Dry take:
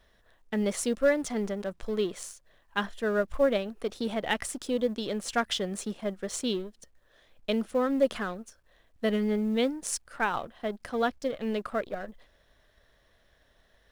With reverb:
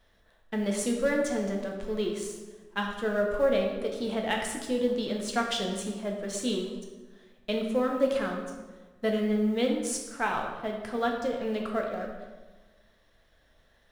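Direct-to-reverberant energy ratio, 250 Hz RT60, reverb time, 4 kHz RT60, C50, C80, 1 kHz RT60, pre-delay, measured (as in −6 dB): 0.0 dB, 1.5 s, 1.3 s, 0.90 s, 4.0 dB, 6.0 dB, 1.2 s, 3 ms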